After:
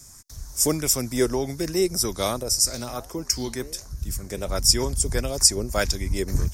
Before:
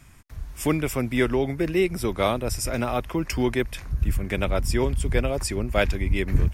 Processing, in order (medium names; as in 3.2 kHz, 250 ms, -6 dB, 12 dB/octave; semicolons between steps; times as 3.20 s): resonant high shelf 4 kHz +13.5 dB, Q 3; 2.43–4.49 s: flange 1.4 Hz, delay 8.9 ms, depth 9.3 ms, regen +85%; sweeping bell 1.6 Hz 420–3600 Hz +7 dB; trim -3 dB